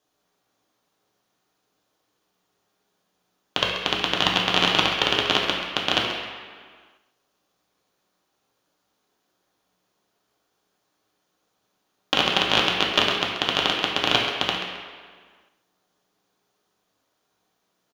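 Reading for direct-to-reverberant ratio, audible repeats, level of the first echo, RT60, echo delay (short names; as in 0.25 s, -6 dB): -3.0 dB, 1, -9.5 dB, 1.7 s, 0.133 s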